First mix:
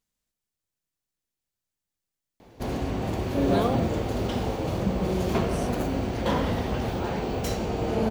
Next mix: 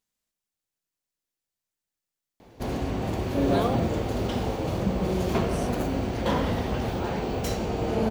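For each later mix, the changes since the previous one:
speech: add bass shelf 170 Hz -8.5 dB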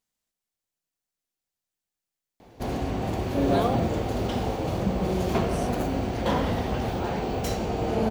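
master: add peaking EQ 740 Hz +3.5 dB 0.27 oct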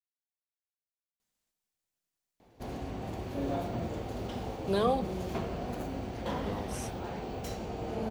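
speech: entry +1.20 s; background -10.0 dB

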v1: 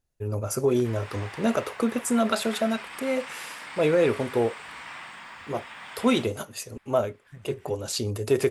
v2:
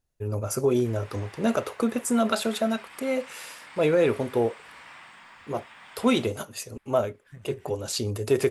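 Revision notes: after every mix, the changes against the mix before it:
background -6.5 dB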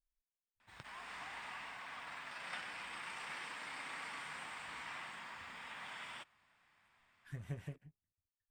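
first voice: muted

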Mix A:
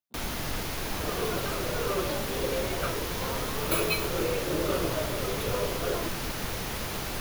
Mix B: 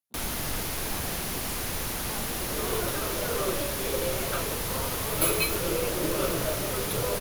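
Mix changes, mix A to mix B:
second sound: entry +1.50 s; master: add peaking EQ 11 kHz +8.5 dB 1 oct

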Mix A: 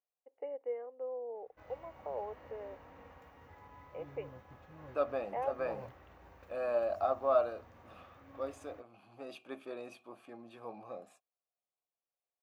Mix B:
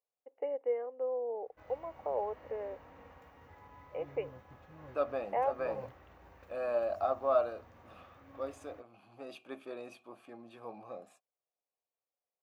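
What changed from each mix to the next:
first voice +5.5 dB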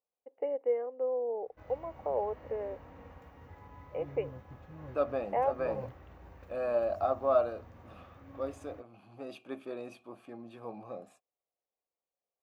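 master: add bass shelf 350 Hz +8.5 dB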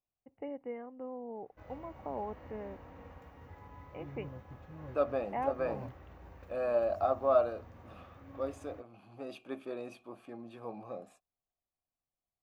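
first voice: remove resonant high-pass 490 Hz, resonance Q 4.4

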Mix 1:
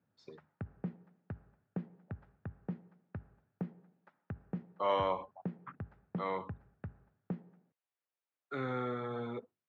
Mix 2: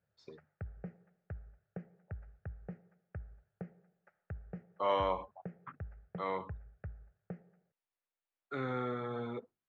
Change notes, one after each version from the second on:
background: add static phaser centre 1 kHz, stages 6; master: remove high-pass 84 Hz 24 dB/octave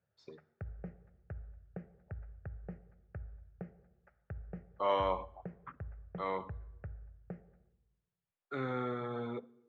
reverb: on, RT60 1.1 s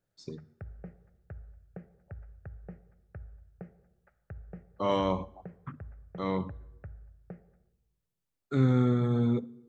speech: remove three-band isolator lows -19 dB, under 470 Hz, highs -22 dB, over 3.3 kHz

